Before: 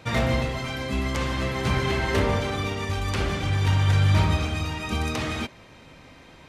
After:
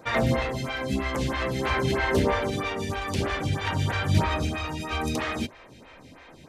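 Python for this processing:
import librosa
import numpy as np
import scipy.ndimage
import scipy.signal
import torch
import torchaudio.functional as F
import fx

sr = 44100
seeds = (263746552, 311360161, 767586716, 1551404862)

y = fx.peak_eq(x, sr, hz=1700.0, db=3.0, octaves=0.21)
y = fx.hum_notches(y, sr, base_hz=50, count=2)
y = fx.stagger_phaser(y, sr, hz=3.1)
y = F.gain(torch.from_numpy(y), 3.0).numpy()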